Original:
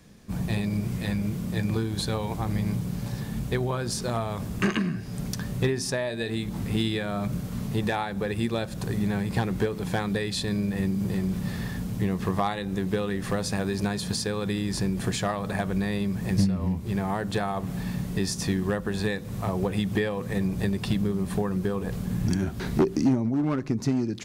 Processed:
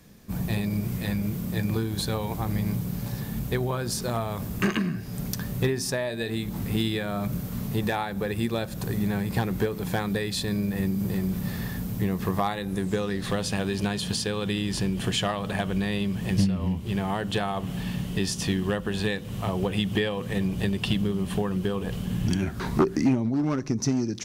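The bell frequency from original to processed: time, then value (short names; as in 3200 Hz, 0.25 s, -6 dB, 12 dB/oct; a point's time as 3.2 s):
bell +13 dB 0.33 oct
12.59 s 14000 Hz
13.38 s 3000 Hz
22.38 s 3000 Hz
22.68 s 880 Hz
23.46 s 5800 Hz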